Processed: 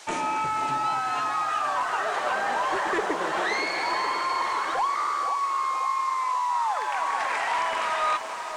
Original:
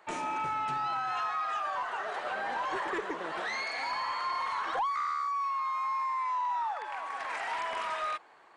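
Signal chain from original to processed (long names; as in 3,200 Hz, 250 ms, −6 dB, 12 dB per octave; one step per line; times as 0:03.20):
speech leveller 0.5 s
on a send: feedback echo with a band-pass in the loop 528 ms, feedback 56%, band-pass 530 Hz, level −7 dB
on the sum: noise in a band 840–8,300 Hz −54 dBFS
feedback echo at a low word length 480 ms, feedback 55%, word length 10 bits, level −11 dB
level +6 dB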